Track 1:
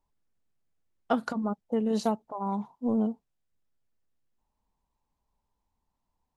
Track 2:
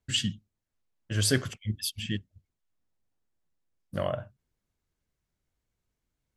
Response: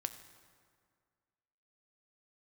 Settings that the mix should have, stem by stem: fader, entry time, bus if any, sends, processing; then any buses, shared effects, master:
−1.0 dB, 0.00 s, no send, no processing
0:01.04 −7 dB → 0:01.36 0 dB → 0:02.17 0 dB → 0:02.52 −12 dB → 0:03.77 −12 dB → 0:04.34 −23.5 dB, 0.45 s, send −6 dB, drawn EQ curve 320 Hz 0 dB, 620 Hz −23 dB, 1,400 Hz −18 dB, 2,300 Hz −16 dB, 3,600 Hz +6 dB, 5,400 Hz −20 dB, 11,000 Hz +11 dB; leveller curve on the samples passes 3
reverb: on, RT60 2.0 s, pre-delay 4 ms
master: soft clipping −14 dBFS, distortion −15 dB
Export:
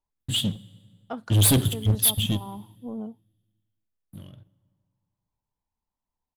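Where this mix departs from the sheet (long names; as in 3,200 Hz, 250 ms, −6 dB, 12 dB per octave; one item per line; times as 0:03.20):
stem 1 −1.0 dB → −8.0 dB
stem 2: entry 0.45 s → 0.20 s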